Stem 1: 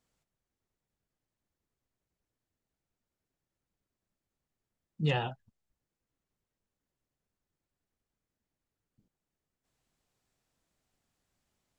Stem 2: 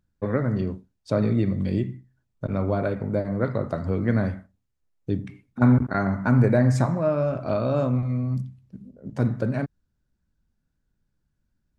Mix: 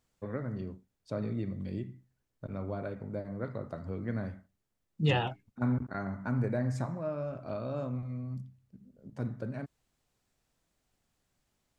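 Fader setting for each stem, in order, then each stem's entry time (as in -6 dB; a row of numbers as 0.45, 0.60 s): +2.0, -12.5 dB; 0.00, 0.00 s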